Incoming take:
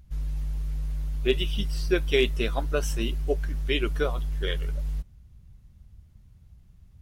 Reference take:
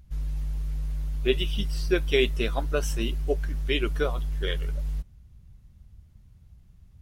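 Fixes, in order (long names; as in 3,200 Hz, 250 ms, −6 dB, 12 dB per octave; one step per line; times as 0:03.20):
clipped peaks rebuilt −11.5 dBFS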